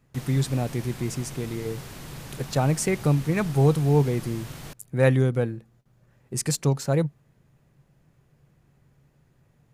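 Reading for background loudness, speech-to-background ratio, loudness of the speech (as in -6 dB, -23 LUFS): -40.0 LUFS, 15.0 dB, -25.0 LUFS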